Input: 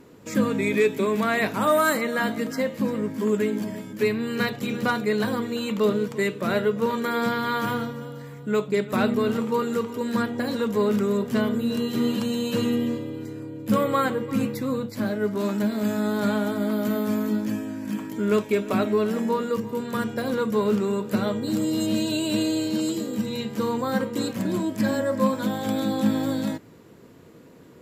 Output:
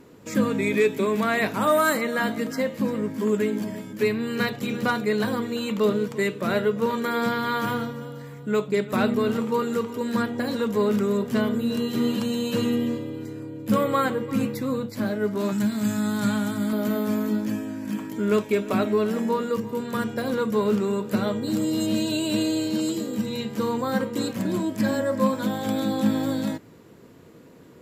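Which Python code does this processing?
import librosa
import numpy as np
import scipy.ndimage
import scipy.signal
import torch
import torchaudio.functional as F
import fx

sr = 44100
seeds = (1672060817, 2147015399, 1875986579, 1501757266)

y = fx.graphic_eq(x, sr, hz=(125, 500, 8000), db=(8, -11, 7), at=(15.52, 16.73))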